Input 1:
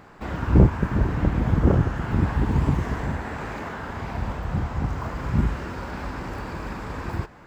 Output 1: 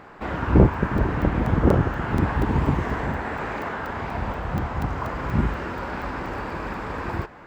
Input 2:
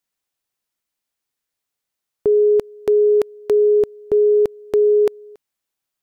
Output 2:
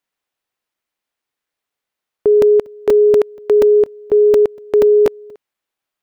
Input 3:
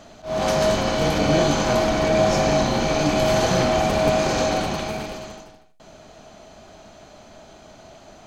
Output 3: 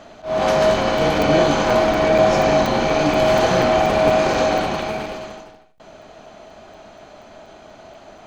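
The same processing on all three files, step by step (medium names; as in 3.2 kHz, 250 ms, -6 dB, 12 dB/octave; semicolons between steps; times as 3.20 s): tone controls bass -6 dB, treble -9 dB; crackling interface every 0.24 s, samples 128, zero, from 0.74 s; trim +4.5 dB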